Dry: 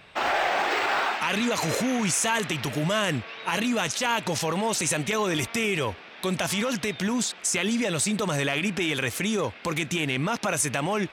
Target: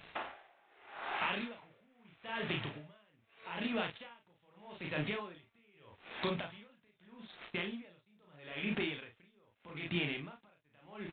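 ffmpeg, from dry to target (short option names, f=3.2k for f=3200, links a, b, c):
-af "acompressor=threshold=-34dB:ratio=10,aecho=1:1:34|52:0.668|0.422,aresample=8000,aeval=exprs='sgn(val(0))*max(abs(val(0))-0.00282,0)':c=same,aresample=44100,aeval=exprs='val(0)*pow(10,-35*(0.5-0.5*cos(2*PI*0.8*n/s))/20)':c=same,volume=2.5dB"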